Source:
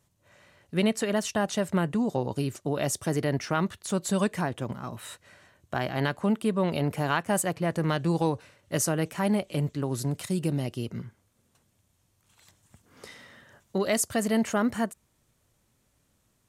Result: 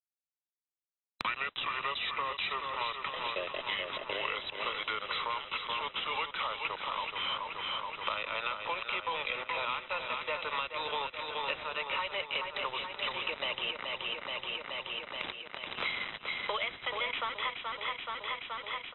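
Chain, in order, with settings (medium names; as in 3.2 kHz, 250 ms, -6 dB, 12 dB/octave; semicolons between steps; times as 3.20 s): gliding tape speed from 59% -> 115%; high-pass 670 Hz 24 dB/octave; tilt EQ +3.5 dB/octave; compression 3:1, threshold -34 dBFS, peak gain reduction 16 dB; static phaser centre 1.1 kHz, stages 8; saturation -33 dBFS, distortion -13 dB; bit crusher 8-bit; modulation noise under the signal 14 dB; brick-wall FIR low-pass 4 kHz; feedback delay 427 ms, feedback 55%, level -7.5 dB; three bands compressed up and down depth 100%; trim +9 dB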